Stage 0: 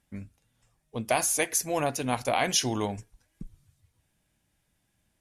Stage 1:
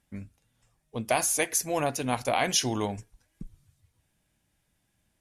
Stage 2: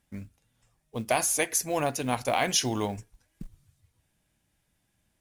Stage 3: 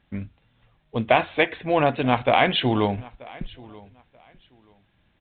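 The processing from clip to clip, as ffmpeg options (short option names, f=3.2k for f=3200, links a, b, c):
-af anull
-af "acrusher=bits=7:mode=log:mix=0:aa=0.000001"
-af "aecho=1:1:933|1866:0.075|0.0165,volume=8dB" -ar 8000 -c:a pcm_alaw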